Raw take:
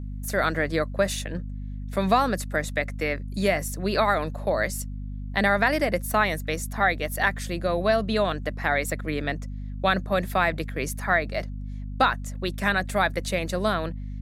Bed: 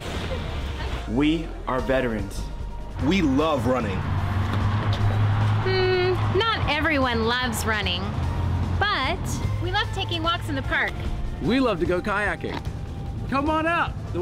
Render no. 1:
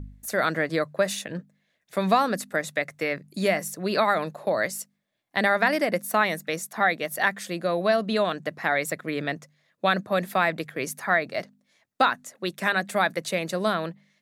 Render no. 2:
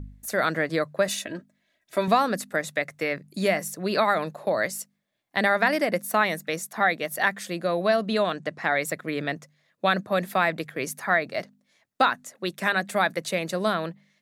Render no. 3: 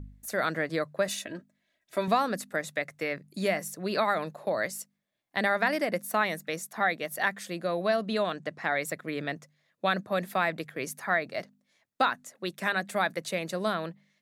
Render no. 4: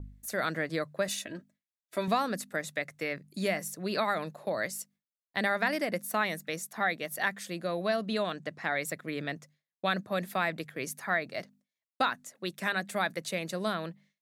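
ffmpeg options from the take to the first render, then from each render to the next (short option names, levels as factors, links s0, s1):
-af "bandreject=f=50:t=h:w=4,bandreject=f=100:t=h:w=4,bandreject=f=150:t=h:w=4,bandreject=f=200:t=h:w=4,bandreject=f=250:t=h:w=4"
-filter_complex "[0:a]asettb=1/sr,asplit=3[s0][s1][s2];[s0]atrim=end=1.084[s3];[s1]atrim=start=1.08:end=2.08,asetpts=PTS-STARTPTS,afade=t=in:d=0.004:c=qsin,afade=t=out:st=0.996:d=0.004:c=qsin,aecho=1:1:3.1:0.62,atrim=end_sample=44100[s4];[s2]atrim=start=2.076[s5];[s3][s4]acrossfade=d=0.004:c1=hsin:c2=qsin[s6];[s6][s5]acrossfade=d=0.004:c1=qsin:c2=hsin,asettb=1/sr,asplit=3[s7][s8][s9];[s7]atrim=end=8.314[s10];[s8]atrim=start=8.31:end=8.76,asetpts=PTS-STARTPTS,afade=t=in:d=0.004:c=qsin,afade=t=out:st=0.446:d=0.004:c=qsin,lowpass=f=9600:w=0.5412,lowpass=f=9600:w=1.3066[s11];[s9]atrim=start=8.756[s12];[s10][s11]acrossfade=d=0.004:c1=hsin:c2=qsin[s13];[s13][s12]acrossfade=d=0.004:c1=qsin:c2=hsin"
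-af "volume=0.596"
-af "agate=range=0.0224:threshold=0.002:ratio=3:detection=peak,equalizer=f=770:t=o:w=2.8:g=-3.5"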